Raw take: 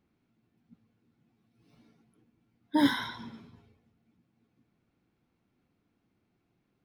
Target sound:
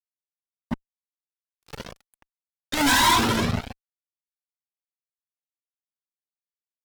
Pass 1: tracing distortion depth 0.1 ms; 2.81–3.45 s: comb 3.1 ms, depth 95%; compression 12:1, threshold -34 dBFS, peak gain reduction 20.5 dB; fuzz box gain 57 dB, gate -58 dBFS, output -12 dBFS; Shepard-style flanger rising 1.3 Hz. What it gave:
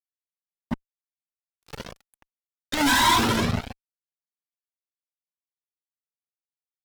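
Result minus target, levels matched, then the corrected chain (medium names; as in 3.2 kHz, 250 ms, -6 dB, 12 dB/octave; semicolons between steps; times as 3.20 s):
compression: peak gain reduction +10.5 dB
tracing distortion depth 0.1 ms; 2.81–3.45 s: comb 3.1 ms, depth 95%; compression 12:1, threshold -22.5 dBFS, peak gain reduction 10 dB; fuzz box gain 57 dB, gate -58 dBFS, output -12 dBFS; Shepard-style flanger rising 1.3 Hz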